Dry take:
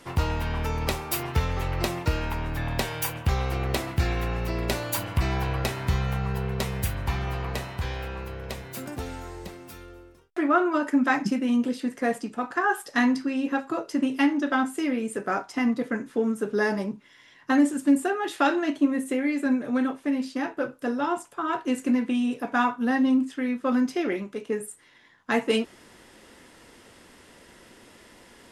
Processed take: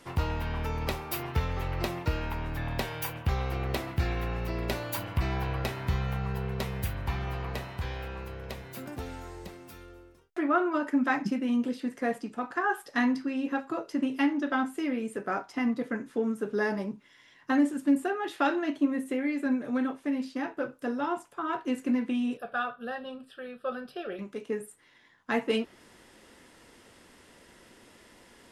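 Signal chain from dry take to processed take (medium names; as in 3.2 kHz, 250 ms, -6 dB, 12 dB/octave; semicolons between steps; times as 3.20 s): dynamic bell 8 kHz, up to -7 dB, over -52 dBFS, Q 0.92; 22.37–24.19 s: static phaser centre 1.4 kHz, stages 8; trim -4 dB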